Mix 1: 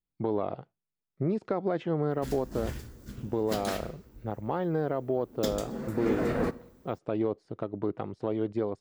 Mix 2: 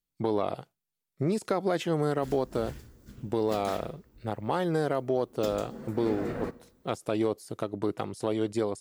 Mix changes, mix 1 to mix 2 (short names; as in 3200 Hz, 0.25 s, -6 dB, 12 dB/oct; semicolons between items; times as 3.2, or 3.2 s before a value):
speech: remove tape spacing loss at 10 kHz 35 dB; background -6.0 dB